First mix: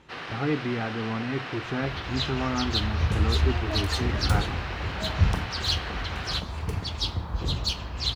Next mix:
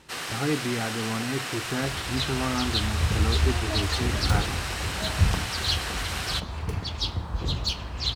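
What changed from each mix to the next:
first sound: remove distance through air 270 m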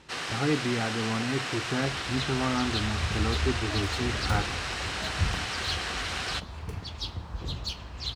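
first sound: add low-pass 6.6 kHz 12 dB/octave; second sound -6.5 dB

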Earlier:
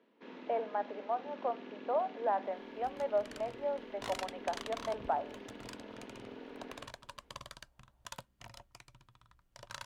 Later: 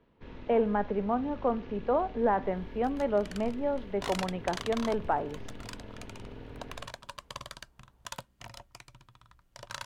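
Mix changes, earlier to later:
speech: remove ladder high-pass 540 Hz, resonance 50%; first sound: remove steep high-pass 210 Hz; second sound +5.5 dB

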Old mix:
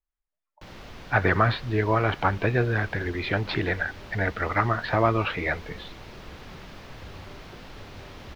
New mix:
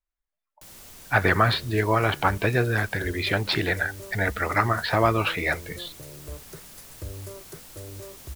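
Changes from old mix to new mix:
first sound -9.5 dB; second sound +8.5 dB; master: remove distance through air 270 m

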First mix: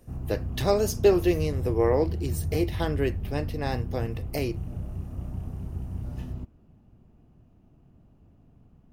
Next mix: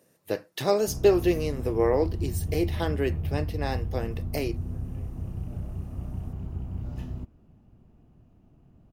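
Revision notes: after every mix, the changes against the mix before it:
speech: add high-pass 150 Hz; background: entry +0.80 s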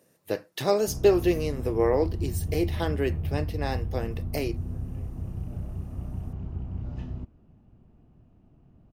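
background: add distance through air 95 m

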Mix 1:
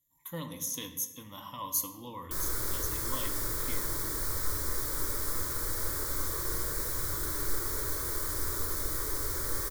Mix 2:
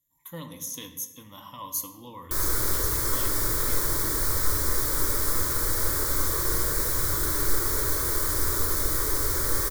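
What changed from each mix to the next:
background +7.5 dB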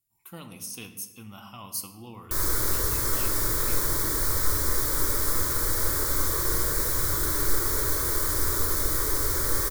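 speech: remove rippled EQ curve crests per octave 1.1, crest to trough 16 dB

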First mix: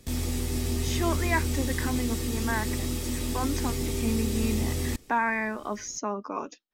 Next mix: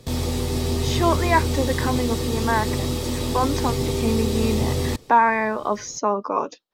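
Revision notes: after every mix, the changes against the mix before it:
master: add graphic EQ 125/500/1000/4000 Hz +11/+10/+9/+8 dB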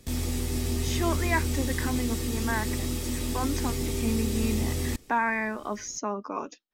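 master: add graphic EQ 125/500/1000/4000 Hz -11/-10/-9/-8 dB

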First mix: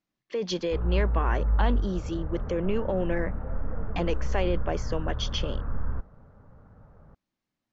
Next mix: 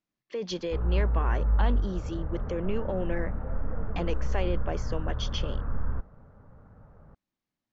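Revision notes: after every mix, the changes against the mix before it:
speech -3.5 dB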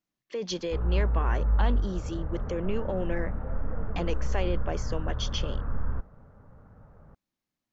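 master: remove distance through air 69 m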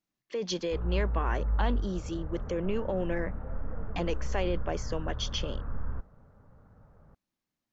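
background -4.5 dB

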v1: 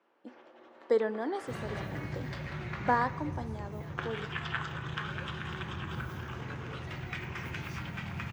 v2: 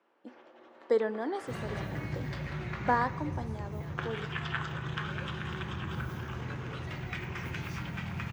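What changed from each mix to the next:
second sound: send +9.0 dB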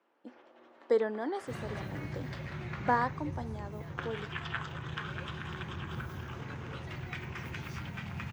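reverb: off

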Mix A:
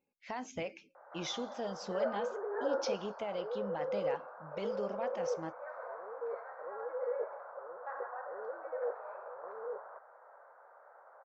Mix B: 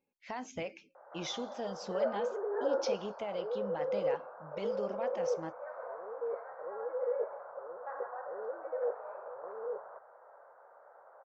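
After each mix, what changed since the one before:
background: add tilt shelf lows +5 dB, about 920 Hz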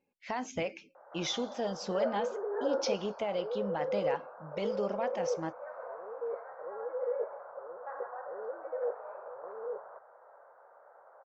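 speech +5.0 dB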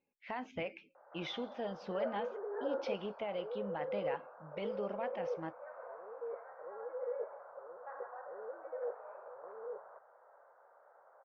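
master: add four-pole ladder low-pass 3.7 kHz, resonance 25%

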